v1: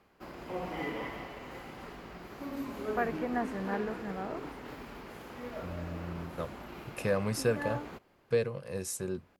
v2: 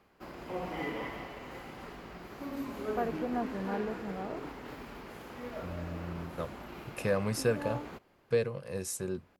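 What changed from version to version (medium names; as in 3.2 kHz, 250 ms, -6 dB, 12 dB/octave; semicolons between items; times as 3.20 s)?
first voice: add low-pass 1 kHz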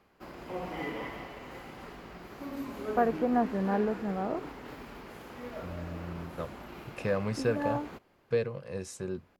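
first voice +7.0 dB; second voice: add distance through air 77 m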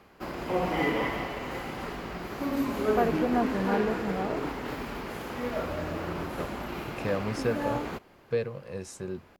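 background +9.5 dB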